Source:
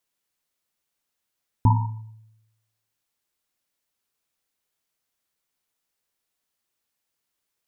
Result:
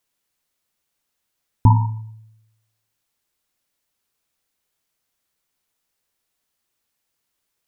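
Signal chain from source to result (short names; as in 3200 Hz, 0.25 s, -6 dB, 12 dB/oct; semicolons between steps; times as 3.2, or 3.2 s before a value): low shelf 120 Hz +3.5 dB; gain +4 dB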